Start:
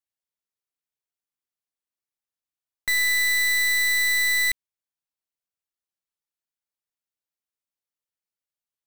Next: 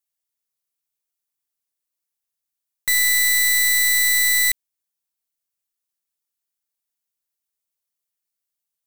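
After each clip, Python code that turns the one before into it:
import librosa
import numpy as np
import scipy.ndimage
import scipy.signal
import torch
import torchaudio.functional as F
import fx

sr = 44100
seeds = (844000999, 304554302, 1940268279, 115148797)

y = fx.high_shelf(x, sr, hz=5300.0, db=11.5)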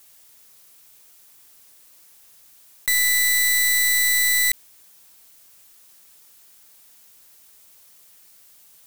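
y = fx.env_flatten(x, sr, amount_pct=50)
y = F.gain(torch.from_numpy(y), -1.5).numpy()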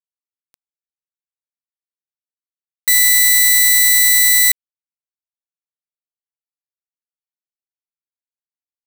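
y = fx.quant_companded(x, sr, bits=2)
y = F.gain(torch.from_numpy(y), -1.0).numpy()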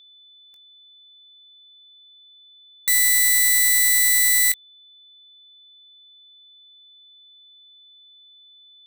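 y = fx.doubler(x, sr, ms=21.0, db=-12)
y = y + 10.0 ** (-42.0 / 20.0) * np.sin(2.0 * np.pi * 3500.0 * np.arange(len(y)) / sr)
y = F.gain(torch.from_numpy(y), -6.0).numpy()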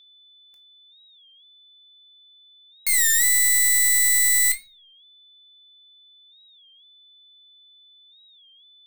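y = fx.room_shoebox(x, sr, seeds[0], volume_m3=290.0, walls='furnished', distance_m=0.83)
y = fx.record_warp(y, sr, rpm=33.33, depth_cents=160.0)
y = F.gain(torch.from_numpy(y), -3.0).numpy()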